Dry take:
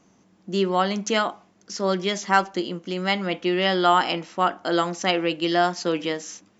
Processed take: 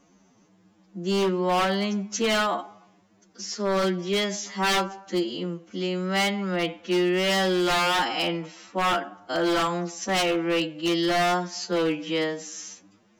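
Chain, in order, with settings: time stretch by phase-locked vocoder 2×; wavefolder -17.5 dBFS

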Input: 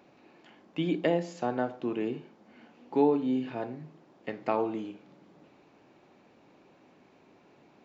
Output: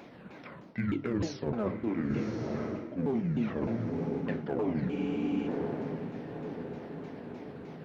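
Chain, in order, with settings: sawtooth pitch modulation -10.5 st, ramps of 306 ms; in parallel at -5.5 dB: hard clipper -28 dBFS, distortion -7 dB; on the sum: echo that smears into a reverb 1067 ms, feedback 50%, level -11 dB; reverse; compression 12:1, threshold -34 dBFS, peak gain reduction 16.5 dB; reverse; de-hum 51.05 Hz, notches 27; spectral freeze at 4.92 s, 0.54 s; trim +7 dB

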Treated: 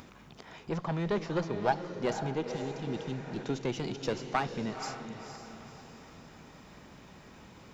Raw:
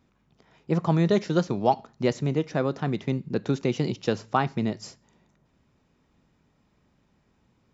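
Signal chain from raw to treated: single-diode clipper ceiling -22.5 dBFS; 0.80–1.53 s: treble shelf 5.9 kHz -11 dB; 2.48–3.41 s: spectral replace 420–2600 Hz; bass shelf 310 Hz -7 dB; upward compressor, threshold -34 dBFS; echo that smears into a reverb 491 ms, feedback 44%, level -8 dB; trim -2 dB

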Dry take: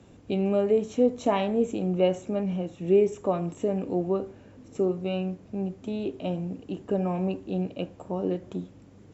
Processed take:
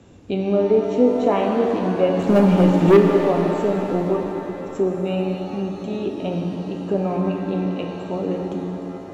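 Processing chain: low-pass that closes with the level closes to 2.5 kHz, closed at -21 dBFS; 2.19–2.97 s: waveshaping leveller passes 3; pitch-shifted reverb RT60 3.2 s, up +7 st, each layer -8 dB, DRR 2 dB; trim +4 dB

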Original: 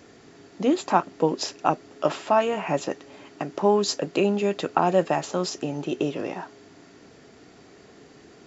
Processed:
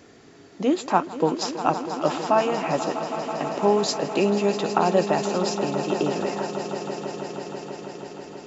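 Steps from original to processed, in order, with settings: echo with a slow build-up 162 ms, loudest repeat 5, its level -13.5 dB

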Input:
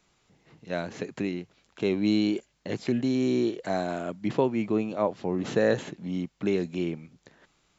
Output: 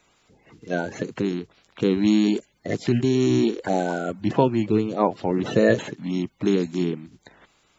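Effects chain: coarse spectral quantiser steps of 30 dB; trim +6 dB

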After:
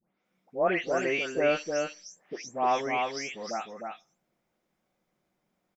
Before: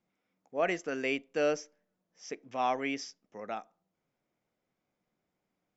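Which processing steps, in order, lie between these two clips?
delay that grows with frequency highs late, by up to 250 ms; on a send: delay 306 ms -4.5 dB; on the sum: trim +4.5 dB

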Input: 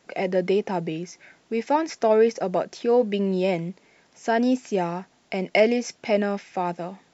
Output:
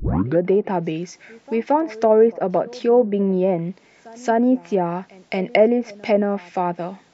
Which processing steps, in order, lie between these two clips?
tape start-up on the opening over 0.40 s; low-pass that closes with the level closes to 1.1 kHz, closed at -18.5 dBFS; pre-echo 225 ms -23 dB; trim +4.5 dB

